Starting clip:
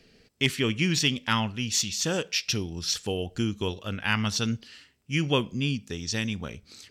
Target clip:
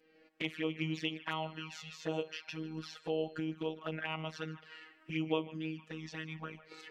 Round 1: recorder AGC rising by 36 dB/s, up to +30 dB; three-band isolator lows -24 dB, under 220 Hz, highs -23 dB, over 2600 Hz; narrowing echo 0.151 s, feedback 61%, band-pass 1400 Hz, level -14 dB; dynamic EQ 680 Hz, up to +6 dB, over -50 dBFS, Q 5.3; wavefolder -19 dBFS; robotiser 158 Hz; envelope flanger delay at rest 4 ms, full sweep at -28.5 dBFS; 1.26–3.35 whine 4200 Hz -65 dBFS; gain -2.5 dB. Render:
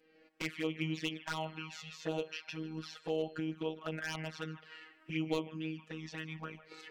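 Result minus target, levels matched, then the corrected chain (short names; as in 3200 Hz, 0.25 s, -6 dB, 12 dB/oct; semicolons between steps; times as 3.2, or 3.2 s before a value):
wavefolder: distortion +33 dB
recorder AGC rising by 36 dB/s, up to +30 dB; three-band isolator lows -24 dB, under 220 Hz, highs -23 dB, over 2600 Hz; narrowing echo 0.151 s, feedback 61%, band-pass 1400 Hz, level -14 dB; dynamic EQ 680 Hz, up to +6 dB, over -50 dBFS, Q 5.3; wavefolder -11.5 dBFS; robotiser 158 Hz; envelope flanger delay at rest 4 ms, full sweep at -28.5 dBFS; 1.26–3.35 whine 4200 Hz -65 dBFS; gain -2.5 dB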